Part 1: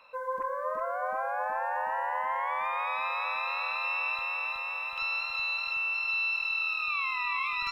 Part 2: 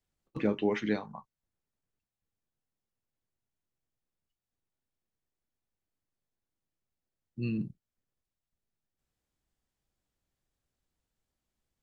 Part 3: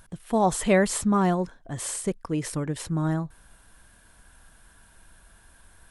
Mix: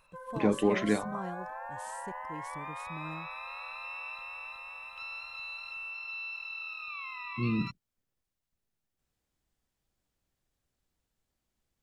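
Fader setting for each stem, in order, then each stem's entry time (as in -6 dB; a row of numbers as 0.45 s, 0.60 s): -10.0 dB, +2.5 dB, -17.5 dB; 0.00 s, 0.00 s, 0.00 s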